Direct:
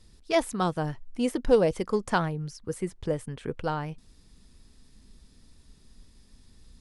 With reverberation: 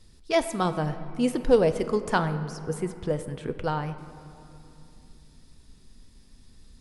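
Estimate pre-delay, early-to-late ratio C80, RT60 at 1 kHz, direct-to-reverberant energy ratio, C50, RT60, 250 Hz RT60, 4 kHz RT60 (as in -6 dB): 7 ms, 12.5 dB, 2.7 s, 9.5 dB, 11.5 dB, 2.7 s, 3.3 s, 1.6 s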